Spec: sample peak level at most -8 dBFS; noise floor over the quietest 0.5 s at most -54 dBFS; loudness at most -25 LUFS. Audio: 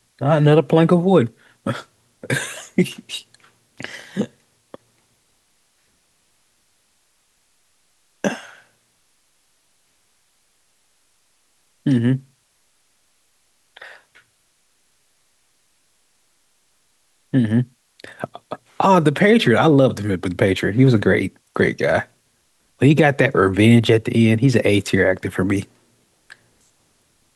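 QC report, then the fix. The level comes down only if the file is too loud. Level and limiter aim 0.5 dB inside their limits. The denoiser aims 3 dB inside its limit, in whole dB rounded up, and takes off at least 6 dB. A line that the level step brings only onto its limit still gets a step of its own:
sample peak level -3.0 dBFS: fail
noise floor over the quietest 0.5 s -63 dBFS: pass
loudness -17.5 LUFS: fail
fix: trim -8 dB

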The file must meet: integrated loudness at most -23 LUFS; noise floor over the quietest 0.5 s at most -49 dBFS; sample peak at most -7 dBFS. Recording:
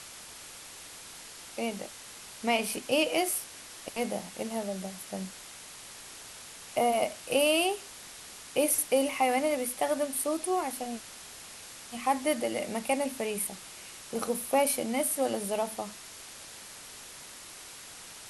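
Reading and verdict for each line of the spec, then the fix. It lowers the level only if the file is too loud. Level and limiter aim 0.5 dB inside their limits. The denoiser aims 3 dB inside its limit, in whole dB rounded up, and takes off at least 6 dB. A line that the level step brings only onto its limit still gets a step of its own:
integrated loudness -30.0 LUFS: pass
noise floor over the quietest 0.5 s -47 dBFS: fail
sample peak -13.0 dBFS: pass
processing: noise reduction 6 dB, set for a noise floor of -47 dBFS

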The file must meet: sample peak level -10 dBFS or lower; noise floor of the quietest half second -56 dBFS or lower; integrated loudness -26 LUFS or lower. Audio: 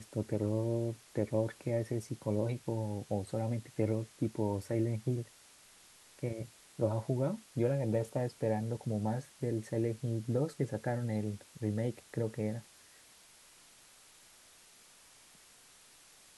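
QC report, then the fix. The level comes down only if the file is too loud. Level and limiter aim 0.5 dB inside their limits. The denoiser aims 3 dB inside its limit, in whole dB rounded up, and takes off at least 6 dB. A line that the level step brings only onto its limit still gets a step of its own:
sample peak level -17.0 dBFS: pass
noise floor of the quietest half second -60 dBFS: pass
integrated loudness -35.5 LUFS: pass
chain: none needed

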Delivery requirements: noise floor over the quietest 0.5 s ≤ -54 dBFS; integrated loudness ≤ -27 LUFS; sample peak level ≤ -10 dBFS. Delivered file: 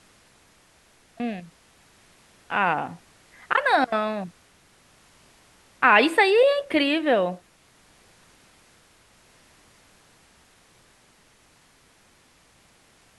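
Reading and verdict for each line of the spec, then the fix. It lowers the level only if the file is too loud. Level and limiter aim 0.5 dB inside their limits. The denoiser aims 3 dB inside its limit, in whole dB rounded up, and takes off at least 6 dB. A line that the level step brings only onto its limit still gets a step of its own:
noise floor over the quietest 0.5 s -59 dBFS: pass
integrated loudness -21.5 LUFS: fail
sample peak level -4.0 dBFS: fail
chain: trim -6 dB; peak limiter -10.5 dBFS

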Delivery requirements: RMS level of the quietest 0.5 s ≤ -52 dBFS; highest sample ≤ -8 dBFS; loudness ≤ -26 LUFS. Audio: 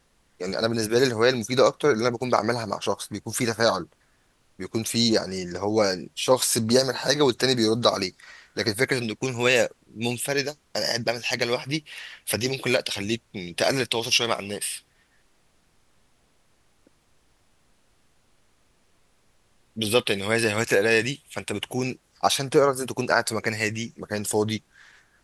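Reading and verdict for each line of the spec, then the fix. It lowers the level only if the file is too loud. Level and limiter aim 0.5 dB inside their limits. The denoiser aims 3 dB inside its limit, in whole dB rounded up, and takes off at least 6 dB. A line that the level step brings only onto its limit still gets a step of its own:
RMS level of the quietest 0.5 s -64 dBFS: pass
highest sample -6.0 dBFS: fail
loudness -24.0 LUFS: fail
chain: trim -2.5 dB

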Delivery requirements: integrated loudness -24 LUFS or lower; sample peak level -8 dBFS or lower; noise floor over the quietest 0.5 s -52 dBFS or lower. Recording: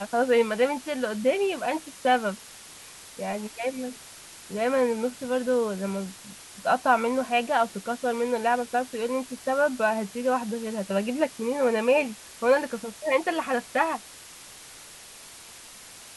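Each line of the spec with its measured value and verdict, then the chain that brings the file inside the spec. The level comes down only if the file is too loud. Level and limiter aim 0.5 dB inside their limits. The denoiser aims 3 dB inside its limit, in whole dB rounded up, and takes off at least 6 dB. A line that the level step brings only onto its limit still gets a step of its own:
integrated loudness -26.5 LUFS: pass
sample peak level -9.0 dBFS: pass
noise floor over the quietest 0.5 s -46 dBFS: fail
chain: noise reduction 9 dB, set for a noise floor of -46 dBFS

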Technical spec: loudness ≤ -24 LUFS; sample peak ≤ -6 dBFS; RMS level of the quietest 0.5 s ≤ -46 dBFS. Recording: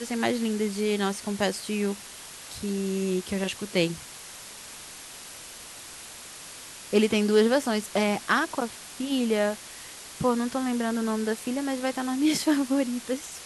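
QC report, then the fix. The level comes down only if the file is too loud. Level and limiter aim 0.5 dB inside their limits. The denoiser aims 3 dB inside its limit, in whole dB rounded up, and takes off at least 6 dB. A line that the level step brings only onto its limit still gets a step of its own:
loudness -27.0 LUFS: pass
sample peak -8.5 dBFS: pass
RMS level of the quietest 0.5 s -43 dBFS: fail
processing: noise reduction 6 dB, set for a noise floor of -43 dBFS

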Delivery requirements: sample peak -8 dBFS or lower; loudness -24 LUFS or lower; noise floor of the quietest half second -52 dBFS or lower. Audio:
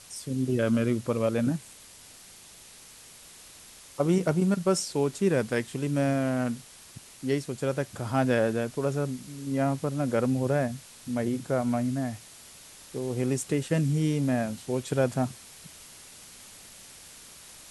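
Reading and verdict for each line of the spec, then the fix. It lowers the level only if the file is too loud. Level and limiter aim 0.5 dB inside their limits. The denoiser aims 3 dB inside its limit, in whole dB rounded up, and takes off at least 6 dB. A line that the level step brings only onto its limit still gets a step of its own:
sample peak -11.5 dBFS: pass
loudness -28.0 LUFS: pass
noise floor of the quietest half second -50 dBFS: fail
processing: noise reduction 6 dB, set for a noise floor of -50 dBFS

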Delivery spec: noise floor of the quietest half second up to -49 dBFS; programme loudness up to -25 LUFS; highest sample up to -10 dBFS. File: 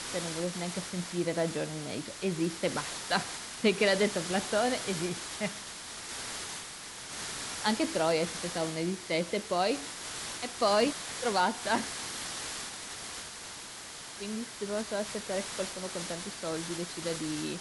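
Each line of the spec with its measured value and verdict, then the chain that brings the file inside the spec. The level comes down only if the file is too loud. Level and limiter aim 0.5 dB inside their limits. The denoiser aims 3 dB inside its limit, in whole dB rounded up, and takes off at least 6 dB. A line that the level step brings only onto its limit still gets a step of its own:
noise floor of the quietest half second -45 dBFS: fail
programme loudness -32.5 LUFS: pass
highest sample -13.5 dBFS: pass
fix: noise reduction 7 dB, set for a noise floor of -45 dBFS

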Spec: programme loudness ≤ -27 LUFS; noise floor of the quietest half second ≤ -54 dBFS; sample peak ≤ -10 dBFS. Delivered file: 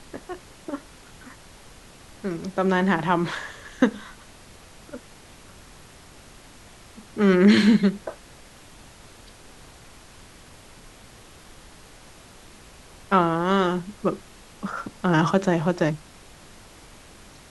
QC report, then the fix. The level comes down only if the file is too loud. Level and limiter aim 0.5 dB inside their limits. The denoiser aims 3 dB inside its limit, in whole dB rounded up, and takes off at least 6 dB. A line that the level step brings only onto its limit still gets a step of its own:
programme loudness -22.5 LUFS: fail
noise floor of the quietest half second -48 dBFS: fail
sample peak -5.0 dBFS: fail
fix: noise reduction 6 dB, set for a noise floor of -48 dBFS; trim -5 dB; peak limiter -10.5 dBFS

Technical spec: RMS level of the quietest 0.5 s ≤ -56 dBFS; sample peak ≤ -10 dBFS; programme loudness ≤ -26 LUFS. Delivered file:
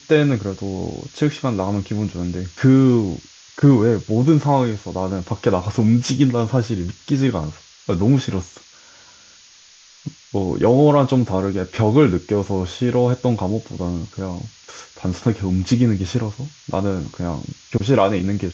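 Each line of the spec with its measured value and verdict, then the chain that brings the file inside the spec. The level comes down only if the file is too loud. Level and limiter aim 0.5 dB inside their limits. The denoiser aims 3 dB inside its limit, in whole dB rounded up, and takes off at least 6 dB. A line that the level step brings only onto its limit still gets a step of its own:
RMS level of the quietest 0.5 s -48 dBFS: fail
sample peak -2.5 dBFS: fail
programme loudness -19.5 LUFS: fail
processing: noise reduction 6 dB, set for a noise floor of -48 dBFS; trim -7 dB; peak limiter -10.5 dBFS

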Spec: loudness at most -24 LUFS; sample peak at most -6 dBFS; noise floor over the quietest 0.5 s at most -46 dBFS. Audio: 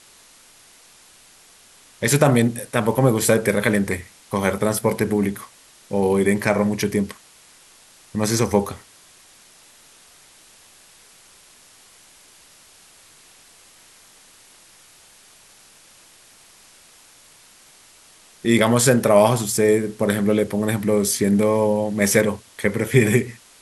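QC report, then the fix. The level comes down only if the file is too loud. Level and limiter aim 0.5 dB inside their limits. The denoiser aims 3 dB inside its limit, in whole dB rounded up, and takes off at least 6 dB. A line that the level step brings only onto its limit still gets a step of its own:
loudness -19.5 LUFS: fail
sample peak -2.5 dBFS: fail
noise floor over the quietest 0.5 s -50 dBFS: pass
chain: trim -5 dB

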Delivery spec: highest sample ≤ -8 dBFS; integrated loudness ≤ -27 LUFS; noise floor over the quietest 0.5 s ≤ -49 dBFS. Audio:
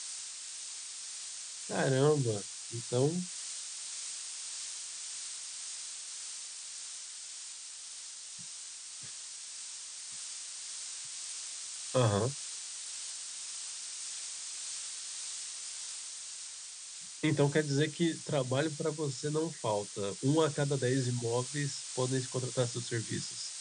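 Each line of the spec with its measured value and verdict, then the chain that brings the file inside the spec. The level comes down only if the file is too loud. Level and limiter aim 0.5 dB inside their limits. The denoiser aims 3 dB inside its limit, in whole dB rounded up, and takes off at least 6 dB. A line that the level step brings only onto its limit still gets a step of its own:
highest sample -15.0 dBFS: pass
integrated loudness -35.5 LUFS: pass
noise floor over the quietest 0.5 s -46 dBFS: fail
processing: noise reduction 6 dB, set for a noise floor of -46 dBFS

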